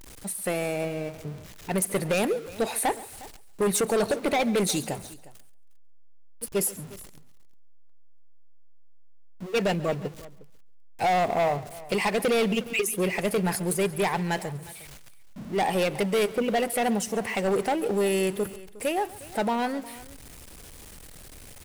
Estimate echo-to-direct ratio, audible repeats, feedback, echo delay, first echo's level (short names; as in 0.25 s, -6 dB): -16.5 dB, 3, no steady repeat, 0.138 s, -19.5 dB